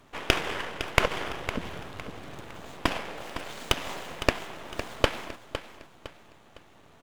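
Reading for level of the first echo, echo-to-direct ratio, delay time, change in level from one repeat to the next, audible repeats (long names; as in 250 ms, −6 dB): −11.0 dB, −10.5 dB, 508 ms, −9.0 dB, 3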